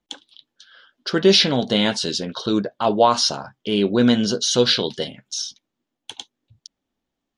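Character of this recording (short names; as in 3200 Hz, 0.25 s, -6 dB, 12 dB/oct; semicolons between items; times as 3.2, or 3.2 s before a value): noise floor -82 dBFS; spectral tilt -3.5 dB/oct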